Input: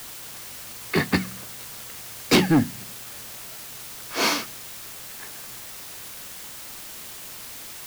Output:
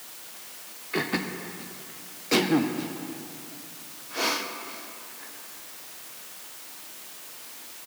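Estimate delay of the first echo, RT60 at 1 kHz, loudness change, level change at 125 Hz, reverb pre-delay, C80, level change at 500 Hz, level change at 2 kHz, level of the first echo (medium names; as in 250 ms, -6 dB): 468 ms, 2.6 s, -4.0 dB, -10.0 dB, 3 ms, 7.0 dB, -3.5 dB, -3.5 dB, -21.5 dB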